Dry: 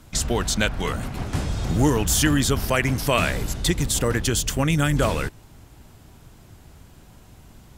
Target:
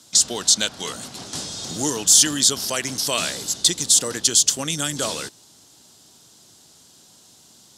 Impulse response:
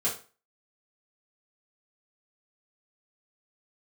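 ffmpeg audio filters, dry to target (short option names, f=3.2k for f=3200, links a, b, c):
-af "aexciter=amount=8.9:drive=2.8:freq=3.4k,highpass=210,lowpass=6.8k,volume=-5dB"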